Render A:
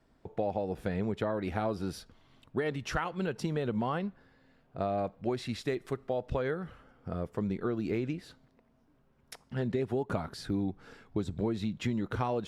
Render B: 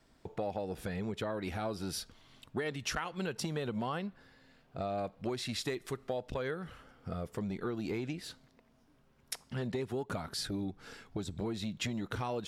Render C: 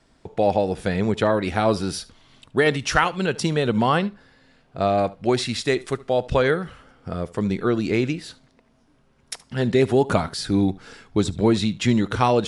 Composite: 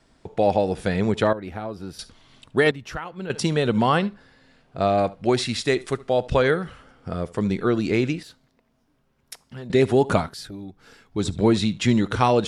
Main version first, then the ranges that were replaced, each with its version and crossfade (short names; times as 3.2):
C
1.33–1.99 from A
2.71–3.3 from A
8.23–9.7 from B
10.27–11.19 from B, crossfade 0.16 s